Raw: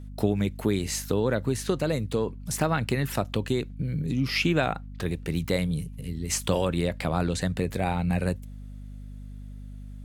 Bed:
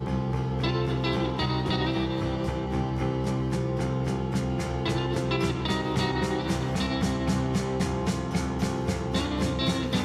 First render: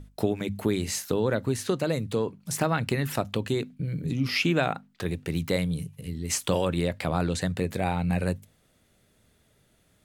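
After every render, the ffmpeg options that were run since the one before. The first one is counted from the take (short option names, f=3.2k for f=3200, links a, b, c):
-af "bandreject=f=50:t=h:w=6,bandreject=f=100:t=h:w=6,bandreject=f=150:t=h:w=6,bandreject=f=200:t=h:w=6,bandreject=f=250:t=h:w=6"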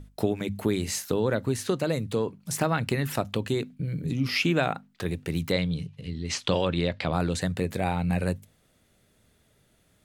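-filter_complex "[0:a]asettb=1/sr,asplit=3[a][b][c];[a]atrim=end=5.524[d];[b]atrim=start=5.52:end=7.13,asetpts=PTS-STARTPTS,afade=t=in:d=0.004:c=qsin,afade=t=out:st=1.606:d=0.004:c=qsin,lowpass=f=4.2k:t=q:w=1.6[e];[c]atrim=start=7.126[f];[d][e]acrossfade=d=0.004:c1=hsin:c2=qsin[g];[g][f]acrossfade=d=0.004:c1=qsin:c2=hsin"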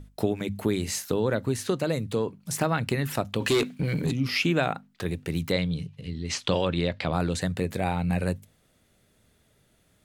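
-filter_complex "[0:a]asplit=3[a][b][c];[a]afade=t=out:st=3.4:d=0.02[d];[b]asplit=2[e][f];[f]highpass=f=720:p=1,volume=23dB,asoftclip=type=tanh:threshold=-14dB[g];[e][g]amix=inputs=2:normalize=0,lowpass=f=7.5k:p=1,volume=-6dB,afade=t=in:st=3.4:d=0.02,afade=t=out:st=4.1:d=0.02[h];[c]afade=t=in:st=4.1:d=0.02[i];[d][h][i]amix=inputs=3:normalize=0"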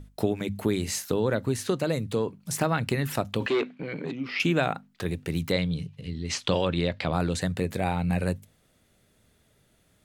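-filter_complex "[0:a]asettb=1/sr,asplit=3[a][b][c];[a]atrim=end=3.464[d];[b]atrim=start=3.46:end=4.4,asetpts=PTS-STARTPTS,afade=t=in:d=0.004:c=qsin,afade=t=out:st=0.936:d=0.004:c=qsin,highpass=300,lowpass=2.5k[e];[c]atrim=start=4.396[f];[d][e]acrossfade=d=0.004:c1=hsin:c2=qsin[g];[g][f]acrossfade=d=0.004:c1=qsin:c2=hsin"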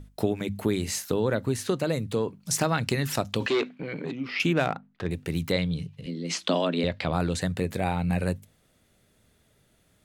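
-filter_complex "[0:a]asettb=1/sr,asplit=3[a][b][c];[a]atrim=end=2.434[d];[b]atrim=start=2.43:end=3.69,asetpts=PTS-STARTPTS,afade=t=in:d=0.004:c=qsin,afade=t=out:st=1.256:d=0.004:c=qsin,equalizer=f=5.7k:w=1:g=7.5[e];[c]atrim=start=3.686[f];[d][e]acrossfade=d=0.004:c1=hsin:c2=qsin[g];[g][f]acrossfade=d=0.004:c1=qsin:c2=hsin,asettb=1/sr,asplit=3[h][i][j];[h]atrim=end=4.534[k];[i]atrim=start=4.53:end=5.11,asetpts=PTS-STARTPTS,afade=t=in:d=0.004:c=qsin,afade=t=out:st=0.576:d=0.004:c=qsin,adynamicsmooth=sensitivity=3.5:basefreq=2.3k[l];[j]atrim=start=5.106[m];[k][l]acrossfade=d=0.004:c1=hsin:c2=qsin[n];[n][m]acrossfade=d=0.004:c1=qsin:c2=hsin,asettb=1/sr,asplit=3[o][p][q];[o]atrim=end=6.064[r];[p]atrim=start=6.06:end=6.84,asetpts=PTS-STARTPTS,afade=t=in:d=0.004:c=qsin,afade=t=out:st=0.776:d=0.004:c=qsin,afreqshift=83[s];[q]atrim=start=6.836[t];[r][s]acrossfade=d=0.004:c1=hsin:c2=qsin[u];[u][t]acrossfade=d=0.004:c1=qsin:c2=hsin"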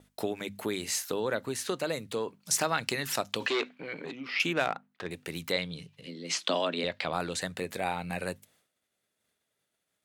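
-af "agate=range=-33dB:threshold=-55dB:ratio=3:detection=peak,highpass=f=670:p=1"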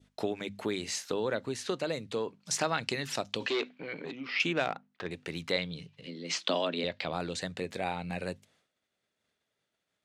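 -af "adynamicequalizer=threshold=0.00562:dfrequency=1300:dqfactor=0.8:tfrequency=1300:tqfactor=0.8:attack=5:release=100:ratio=0.375:range=3.5:mode=cutabove:tftype=bell,lowpass=6k"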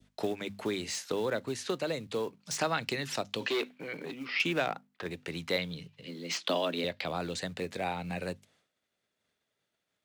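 -filter_complex "[0:a]acrossover=split=180|480|3500[a][b][c][d];[b]acrusher=bits=4:mode=log:mix=0:aa=0.000001[e];[d]asoftclip=type=hard:threshold=-33dB[f];[a][e][c][f]amix=inputs=4:normalize=0"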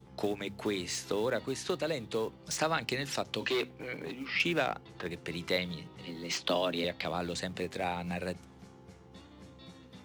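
-filter_complex "[1:a]volume=-25.5dB[a];[0:a][a]amix=inputs=2:normalize=0"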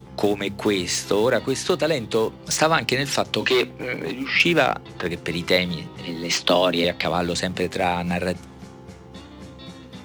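-af "volume=12dB"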